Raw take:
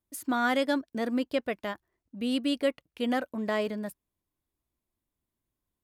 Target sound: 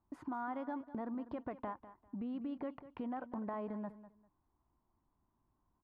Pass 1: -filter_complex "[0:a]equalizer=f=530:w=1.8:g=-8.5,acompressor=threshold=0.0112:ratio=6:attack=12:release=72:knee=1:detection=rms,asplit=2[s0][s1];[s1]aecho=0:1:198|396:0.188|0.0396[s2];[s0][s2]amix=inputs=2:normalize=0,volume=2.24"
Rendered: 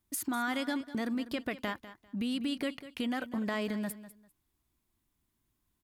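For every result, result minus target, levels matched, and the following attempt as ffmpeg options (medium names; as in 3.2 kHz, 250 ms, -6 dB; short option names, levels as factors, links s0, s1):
compression: peak gain reduction -9.5 dB; 1 kHz band -4.5 dB
-filter_complex "[0:a]equalizer=f=530:w=1.8:g=-8.5,acompressor=threshold=0.00376:ratio=6:attack=12:release=72:knee=1:detection=rms,asplit=2[s0][s1];[s1]aecho=0:1:198|396:0.188|0.0396[s2];[s0][s2]amix=inputs=2:normalize=0,volume=2.24"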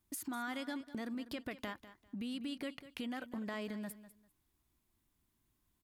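1 kHz band -4.5 dB
-filter_complex "[0:a]lowpass=f=950:t=q:w=2.9,equalizer=f=530:w=1.8:g=-8.5,acompressor=threshold=0.00376:ratio=6:attack=12:release=72:knee=1:detection=rms,asplit=2[s0][s1];[s1]aecho=0:1:198|396:0.188|0.0396[s2];[s0][s2]amix=inputs=2:normalize=0,volume=2.24"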